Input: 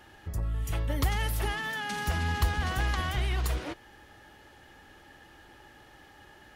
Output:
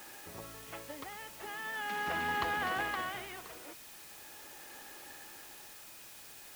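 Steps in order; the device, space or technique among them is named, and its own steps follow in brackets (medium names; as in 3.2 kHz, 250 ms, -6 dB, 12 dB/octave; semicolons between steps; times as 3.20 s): shortwave radio (band-pass 330–2700 Hz; tremolo 0.41 Hz, depth 79%; whistle 2.5 kHz -66 dBFS; white noise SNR 11 dB); trim +1.5 dB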